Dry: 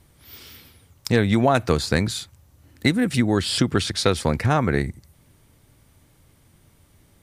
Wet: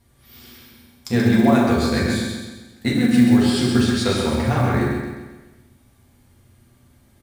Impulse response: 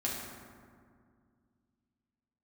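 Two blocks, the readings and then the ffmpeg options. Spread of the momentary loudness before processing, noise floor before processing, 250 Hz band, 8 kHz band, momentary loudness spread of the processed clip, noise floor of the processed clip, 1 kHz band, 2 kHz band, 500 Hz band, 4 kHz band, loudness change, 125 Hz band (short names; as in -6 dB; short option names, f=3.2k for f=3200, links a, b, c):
7 LU, -58 dBFS, +6.5 dB, -1.0 dB, 13 LU, -56 dBFS, 0.0 dB, +0.5 dB, +0.5 dB, -0.5 dB, +3.0 dB, +1.5 dB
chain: -filter_complex "[0:a]aecho=1:1:132|264|396|528|660|792:0.562|0.27|0.13|0.0622|0.0299|0.0143[a];[1:a]atrim=start_sample=2205,afade=t=out:st=0.25:d=0.01,atrim=end_sample=11466[b];[a][b]afir=irnorm=-1:irlink=0,acrusher=bits=8:mode=log:mix=0:aa=0.000001,volume=-5dB"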